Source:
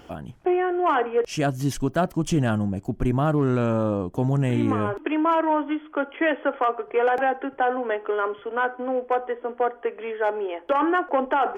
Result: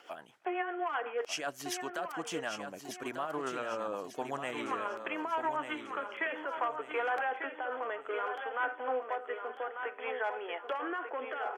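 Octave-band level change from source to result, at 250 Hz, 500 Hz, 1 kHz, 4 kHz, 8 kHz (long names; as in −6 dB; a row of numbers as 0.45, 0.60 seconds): −19.0 dB, −13.0 dB, −10.5 dB, −4.5 dB, can't be measured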